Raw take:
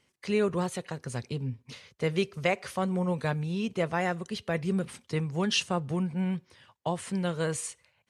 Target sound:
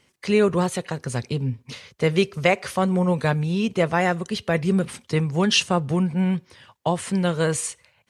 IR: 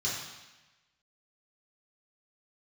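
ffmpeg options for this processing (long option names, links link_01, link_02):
-af "volume=8dB"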